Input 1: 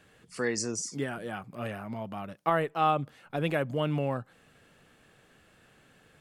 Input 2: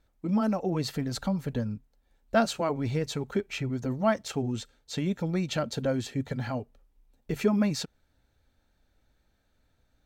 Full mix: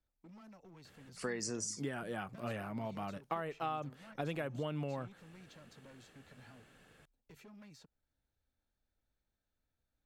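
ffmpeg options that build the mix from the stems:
-filter_complex "[0:a]acompressor=threshold=-31dB:ratio=12,adelay=850,volume=-3dB[a];[1:a]acrossover=split=140|430|1400[b][c][d][e];[b]acompressor=threshold=-48dB:ratio=4[f];[c]acompressor=threshold=-42dB:ratio=4[g];[d]acompressor=threshold=-47dB:ratio=4[h];[e]acompressor=threshold=-45dB:ratio=4[i];[f][g][h][i]amix=inputs=4:normalize=0,volume=35.5dB,asoftclip=hard,volume=-35.5dB,volume=-17dB[j];[a][j]amix=inputs=2:normalize=0"

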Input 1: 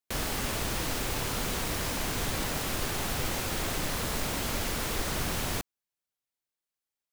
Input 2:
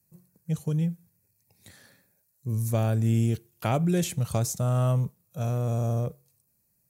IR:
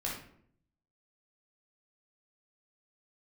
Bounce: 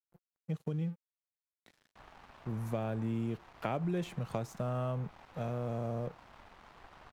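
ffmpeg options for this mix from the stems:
-filter_complex "[0:a]lowpass=1.2k,lowshelf=f=590:t=q:w=1.5:g=-9.5,adelay=1850,volume=-11.5dB[a];[1:a]acrossover=split=150 3500:gain=0.224 1 0.112[b][c][d];[b][c][d]amix=inputs=3:normalize=0,volume=0dB[e];[a][e]amix=inputs=2:normalize=0,aeval=exprs='sgn(val(0))*max(abs(val(0))-0.00224,0)':c=same,acompressor=threshold=-34dB:ratio=2.5"

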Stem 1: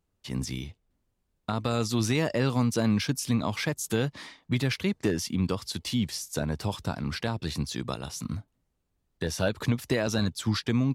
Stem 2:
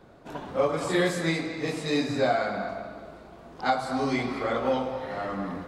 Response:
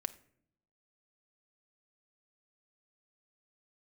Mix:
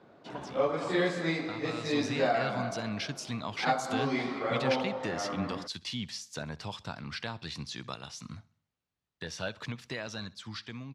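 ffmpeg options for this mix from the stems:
-filter_complex "[0:a]equalizer=f=320:t=o:w=2.6:g=-10.5,dynaudnorm=f=640:g=7:m=8.5dB,volume=-9.5dB,asplit=2[a][b];[b]volume=-22dB[c];[1:a]volume=-3.5dB[d];[c]aecho=0:1:65|130|195|260|325|390:1|0.45|0.202|0.0911|0.041|0.0185[e];[a][d][e]amix=inputs=3:normalize=0,highpass=140,lowpass=5k"

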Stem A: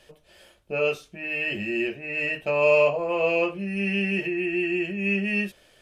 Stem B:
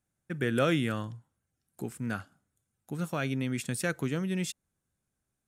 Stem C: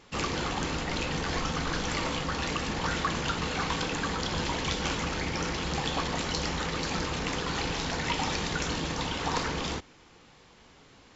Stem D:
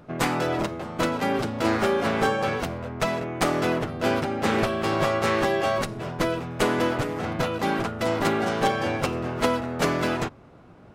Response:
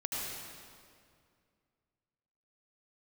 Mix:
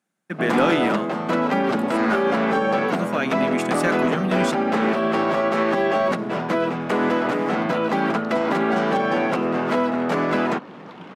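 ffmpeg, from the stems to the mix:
-filter_complex "[1:a]volume=-2.5dB[a];[2:a]acompressor=threshold=-39dB:ratio=6,adynamicsmooth=sensitivity=7:basefreq=1.4k,adelay=1900,volume=-9dB[b];[3:a]equalizer=f=94:w=0.99:g=13,adelay=300,volume=-2.5dB[c];[b][c]amix=inputs=2:normalize=0,acrossover=split=150|680|2300[d][e][f][g];[d]acompressor=threshold=-39dB:ratio=4[h];[e]acompressor=threshold=-27dB:ratio=4[i];[f]acompressor=threshold=-34dB:ratio=4[j];[g]acompressor=threshold=-48dB:ratio=4[k];[h][i][j][k]amix=inputs=4:normalize=0,alimiter=limit=-21dB:level=0:latency=1:release=34,volume=0dB[l];[a][l]amix=inputs=2:normalize=0,lowshelf=f=130:t=q:w=3:g=-13.5,asplit=2[m][n];[n]highpass=f=720:p=1,volume=19dB,asoftclip=type=tanh:threshold=-3.5dB[o];[m][o]amix=inputs=2:normalize=0,lowpass=f=2.9k:p=1,volume=-6dB"

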